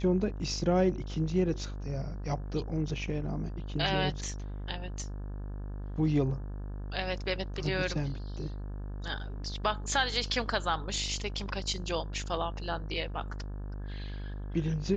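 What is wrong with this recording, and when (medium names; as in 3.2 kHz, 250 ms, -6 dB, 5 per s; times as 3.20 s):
buzz 50 Hz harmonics 35 -38 dBFS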